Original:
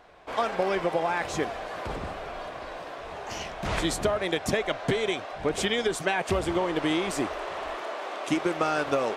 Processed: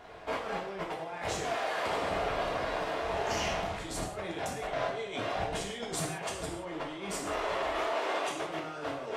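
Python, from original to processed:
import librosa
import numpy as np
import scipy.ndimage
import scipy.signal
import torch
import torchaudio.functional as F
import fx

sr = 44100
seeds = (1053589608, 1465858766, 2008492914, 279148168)

y = fx.highpass(x, sr, hz=580.0, slope=6, at=(1.39, 2.1))
y = fx.over_compress(y, sr, threshold_db=-36.0, ratio=-1.0)
y = fx.rev_gated(y, sr, seeds[0], gate_ms=210, shape='falling', drr_db=-2.5)
y = y * 10.0 ** (-4.5 / 20.0)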